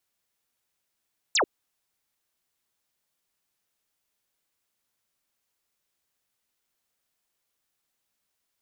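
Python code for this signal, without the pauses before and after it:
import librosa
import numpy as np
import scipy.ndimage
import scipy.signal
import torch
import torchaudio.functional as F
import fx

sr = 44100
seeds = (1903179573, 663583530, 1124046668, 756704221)

y = fx.laser_zap(sr, level_db=-19.5, start_hz=8500.0, end_hz=300.0, length_s=0.09, wave='sine')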